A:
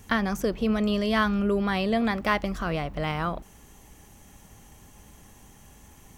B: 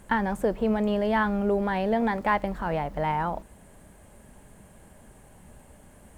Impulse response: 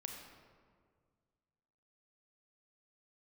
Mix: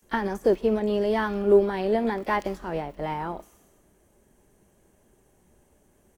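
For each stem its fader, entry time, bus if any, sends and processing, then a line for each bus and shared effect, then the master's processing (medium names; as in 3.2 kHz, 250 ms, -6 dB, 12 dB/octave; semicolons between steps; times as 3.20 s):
-9.5 dB, 0.00 s, send -5 dB, steep high-pass 270 Hz; treble shelf 3.3 kHz +10.5 dB; decay stretcher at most 39 dB/s; auto duck -9 dB, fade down 0.20 s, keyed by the second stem
+0.5 dB, 22 ms, no send, peaking EQ 370 Hz +11 dB 0.59 oct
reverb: on, RT60 1.9 s, pre-delay 29 ms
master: upward expansion 1.5:1, over -39 dBFS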